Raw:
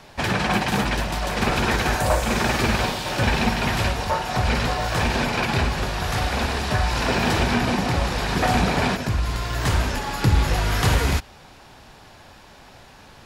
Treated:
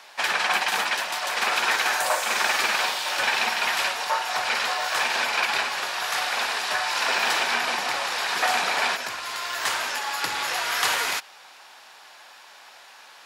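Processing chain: high-pass 930 Hz 12 dB/octave; trim +2.5 dB

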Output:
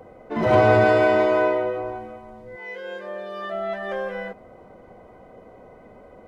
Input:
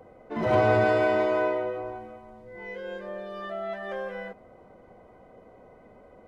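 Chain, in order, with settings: 2.55–3.52 s: high-pass 830 Hz -> 240 Hz 6 dB/octave; trim +5.5 dB

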